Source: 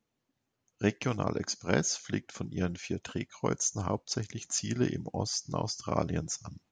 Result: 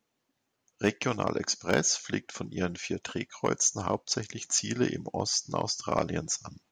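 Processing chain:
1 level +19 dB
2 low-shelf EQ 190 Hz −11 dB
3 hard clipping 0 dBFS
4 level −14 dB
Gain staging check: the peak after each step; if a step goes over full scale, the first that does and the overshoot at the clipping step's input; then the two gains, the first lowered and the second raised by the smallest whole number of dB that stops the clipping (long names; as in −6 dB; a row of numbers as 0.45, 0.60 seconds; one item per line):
+8.0, +7.5, 0.0, −14.0 dBFS
step 1, 7.5 dB
step 1 +11 dB, step 4 −6 dB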